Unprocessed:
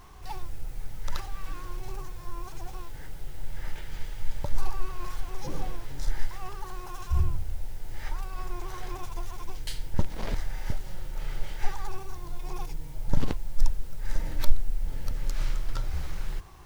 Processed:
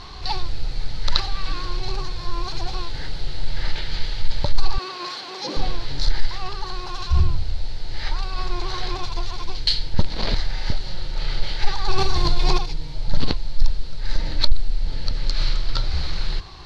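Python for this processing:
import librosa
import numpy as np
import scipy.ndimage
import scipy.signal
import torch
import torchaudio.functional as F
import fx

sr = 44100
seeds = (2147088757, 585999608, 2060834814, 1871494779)

p1 = fx.highpass(x, sr, hz=220.0, slope=24, at=(4.78, 5.57))
p2 = fx.rider(p1, sr, range_db=10, speed_s=2.0)
p3 = p1 + (p2 * 10.0 ** (1.5 / 20.0))
p4 = 10.0 ** (-4.5 / 20.0) * np.tanh(p3 / 10.0 ** (-4.5 / 20.0))
p5 = fx.lowpass_res(p4, sr, hz=4300.0, q=7.4)
p6 = fx.env_flatten(p5, sr, amount_pct=50, at=(11.87, 12.57), fade=0.02)
y = p6 * 10.0 ** (1.0 / 20.0)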